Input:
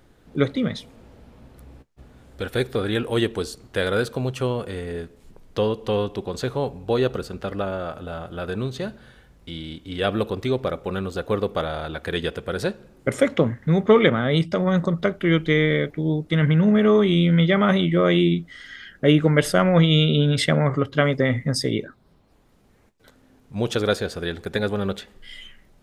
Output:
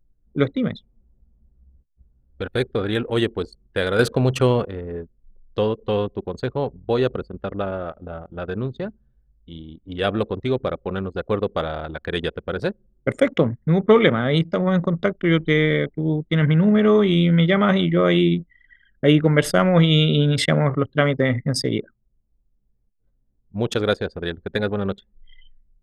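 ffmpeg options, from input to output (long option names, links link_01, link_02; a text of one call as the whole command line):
ffmpeg -i in.wav -filter_complex "[0:a]asettb=1/sr,asplit=3[link_01][link_02][link_03];[link_01]atrim=end=3.994[link_04];[link_02]atrim=start=3.99:end=4.66,asetpts=PTS-STARTPTS,afade=type=in:duration=0.004:curve=qsin,afade=type=out:start_time=0.666:duration=0.004:curve=qsin,acontrast=54[link_05];[link_03]atrim=start=4.656[link_06];[link_04][link_05]acrossfade=duration=0.004:curve1=hsin:curve2=qsin[link_07];[link_07][link_06]acrossfade=duration=0.004:curve1=qsin:curve2=hsin,anlmdn=63.1,volume=1dB" out.wav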